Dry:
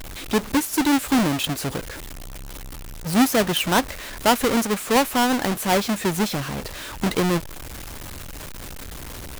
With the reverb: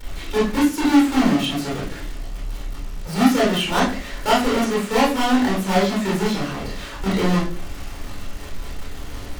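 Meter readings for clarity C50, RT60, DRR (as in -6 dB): 4.0 dB, 0.40 s, -7.5 dB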